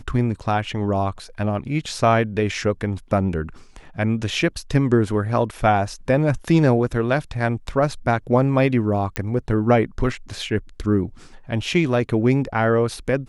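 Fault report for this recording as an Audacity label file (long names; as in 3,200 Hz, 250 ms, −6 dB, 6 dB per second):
9.160000	9.160000	click −7 dBFS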